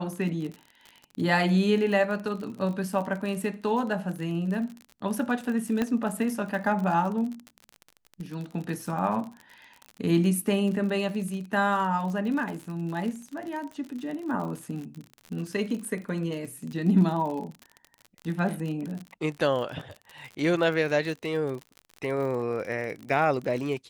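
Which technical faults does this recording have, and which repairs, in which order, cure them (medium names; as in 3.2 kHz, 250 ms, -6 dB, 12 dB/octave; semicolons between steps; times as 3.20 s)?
crackle 43 per s -33 dBFS
5.82 s: pop -14 dBFS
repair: de-click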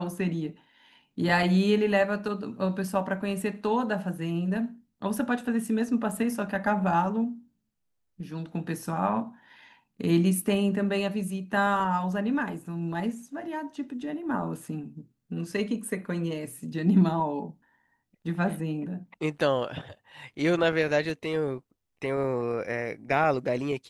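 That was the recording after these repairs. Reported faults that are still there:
5.82 s: pop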